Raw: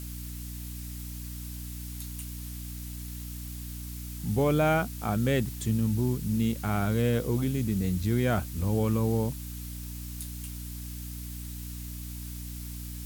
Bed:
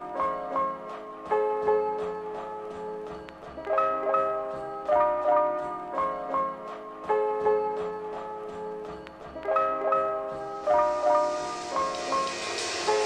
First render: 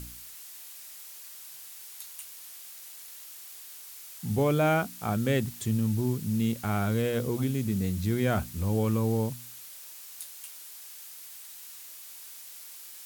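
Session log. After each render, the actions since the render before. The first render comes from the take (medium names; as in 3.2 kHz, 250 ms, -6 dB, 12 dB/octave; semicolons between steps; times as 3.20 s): de-hum 60 Hz, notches 5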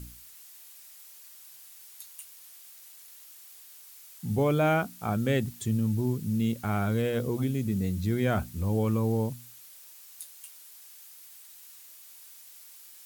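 noise reduction 6 dB, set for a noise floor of -46 dBFS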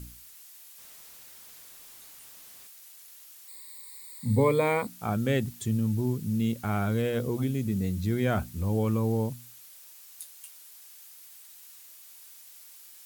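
0.78–2.67 s: one-bit comparator; 3.48–4.87 s: rippled EQ curve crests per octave 0.97, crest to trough 17 dB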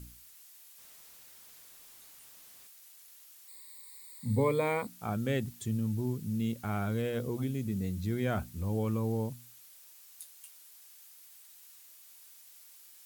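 trim -5 dB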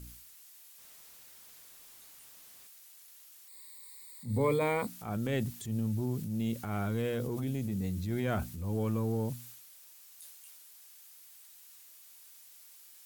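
transient shaper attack -7 dB, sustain +5 dB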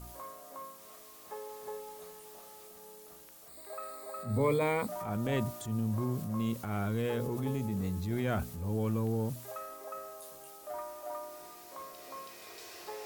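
add bed -18.5 dB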